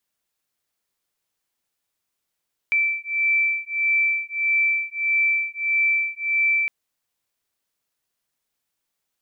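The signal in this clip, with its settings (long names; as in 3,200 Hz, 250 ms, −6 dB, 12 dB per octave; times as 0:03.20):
two tones that beat 2,330 Hz, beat 1.6 Hz, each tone −22 dBFS 3.96 s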